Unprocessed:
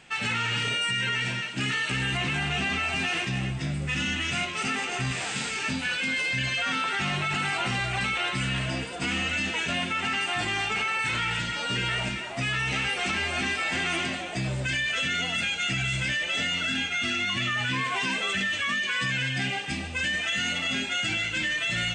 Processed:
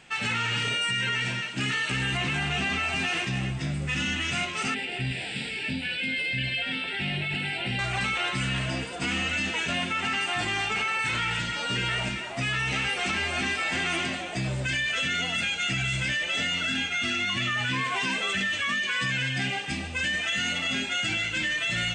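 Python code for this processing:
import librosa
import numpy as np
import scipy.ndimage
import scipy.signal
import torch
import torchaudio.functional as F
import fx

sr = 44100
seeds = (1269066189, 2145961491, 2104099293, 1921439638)

y = fx.fixed_phaser(x, sr, hz=2800.0, stages=4, at=(4.74, 7.79))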